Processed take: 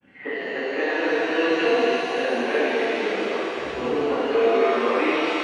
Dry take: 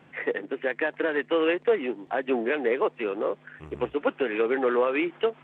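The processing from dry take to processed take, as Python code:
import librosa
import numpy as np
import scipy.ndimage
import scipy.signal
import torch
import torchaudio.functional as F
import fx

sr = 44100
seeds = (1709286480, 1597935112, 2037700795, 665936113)

y = fx.spec_dropout(x, sr, seeds[0], share_pct=22)
y = fx.granulator(y, sr, seeds[1], grain_ms=100.0, per_s=20.0, spray_ms=100.0, spread_st=0)
y = fx.echo_thinned(y, sr, ms=273, feedback_pct=79, hz=960.0, wet_db=-5.0)
y = fx.rev_shimmer(y, sr, seeds[2], rt60_s=2.2, semitones=7, shimmer_db=-8, drr_db=-9.0)
y = y * 10.0 ** (-4.0 / 20.0)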